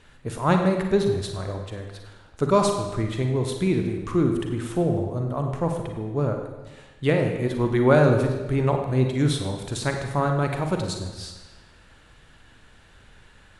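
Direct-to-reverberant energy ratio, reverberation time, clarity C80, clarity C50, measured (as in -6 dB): 3.5 dB, 1.2 s, 6.5 dB, 4.5 dB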